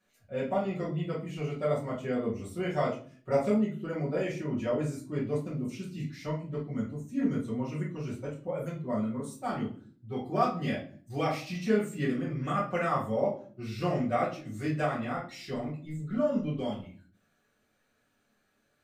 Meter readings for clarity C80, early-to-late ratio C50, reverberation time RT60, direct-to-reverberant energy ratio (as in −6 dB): 13.0 dB, 7.0 dB, 0.45 s, −8.5 dB